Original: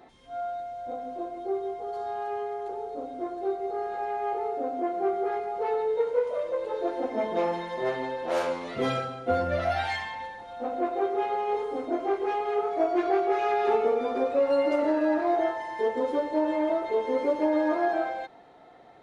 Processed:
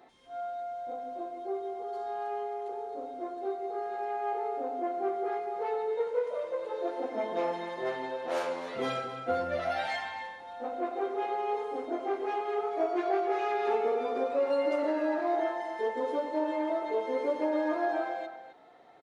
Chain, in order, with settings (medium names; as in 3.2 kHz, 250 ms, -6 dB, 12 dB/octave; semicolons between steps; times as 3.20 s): bass shelf 160 Hz -12 dB; echo from a far wall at 45 m, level -10 dB; trim -3.5 dB